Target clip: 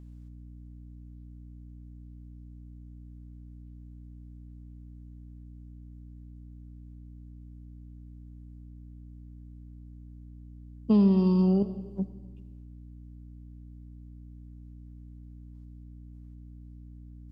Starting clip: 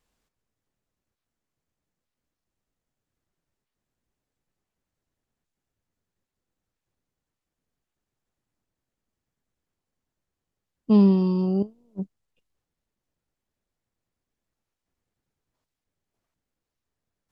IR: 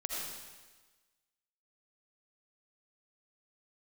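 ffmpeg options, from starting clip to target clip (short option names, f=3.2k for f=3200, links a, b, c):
-filter_complex "[0:a]acrossover=split=150[a][b];[b]acompressor=threshold=-21dB:ratio=6[c];[a][c]amix=inputs=2:normalize=0,aeval=exprs='val(0)+0.00562*(sin(2*PI*60*n/s)+sin(2*PI*2*60*n/s)/2+sin(2*PI*3*60*n/s)/3+sin(2*PI*4*60*n/s)/4+sin(2*PI*5*60*n/s)/5)':c=same,asplit=2[d][e];[1:a]atrim=start_sample=2205[f];[e][f]afir=irnorm=-1:irlink=0,volume=-13dB[g];[d][g]amix=inputs=2:normalize=0,volume=-1.5dB"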